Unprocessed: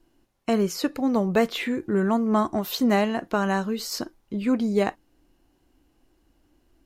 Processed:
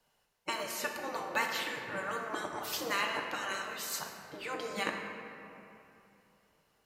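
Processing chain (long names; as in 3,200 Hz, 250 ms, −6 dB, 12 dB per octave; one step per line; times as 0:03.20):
high-pass filter 370 Hz 6 dB per octave
gate on every frequency bin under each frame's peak −10 dB weak
on a send: convolution reverb RT60 2.9 s, pre-delay 3 ms, DRR 1 dB
on the sum: level −1.5 dB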